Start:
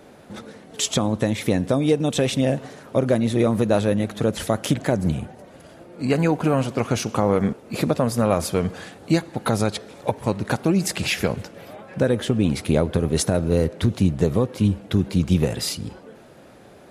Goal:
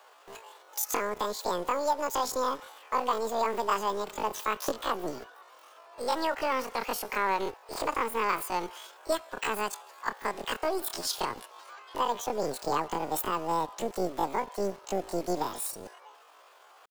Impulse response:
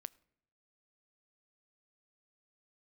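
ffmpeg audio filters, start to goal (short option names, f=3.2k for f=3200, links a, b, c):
-filter_complex "[0:a]highpass=170,acrossover=split=230|750|2200[a][b][c][d];[a]acrusher=bits=4:dc=4:mix=0:aa=0.000001[e];[e][b][c][d]amix=inputs=4:normalize=0,asetrate=85689,aresample=44100,atempo=0.514651,volume=-7dB"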